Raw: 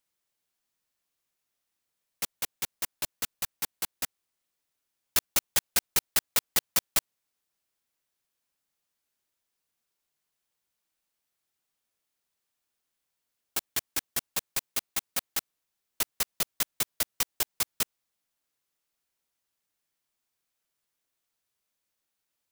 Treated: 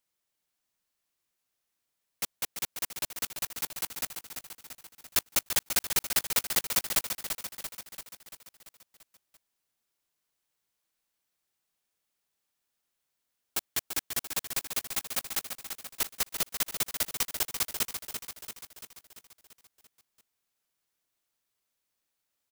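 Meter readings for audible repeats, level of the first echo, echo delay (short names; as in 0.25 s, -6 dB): 6, -7.5 dB, 0.34 s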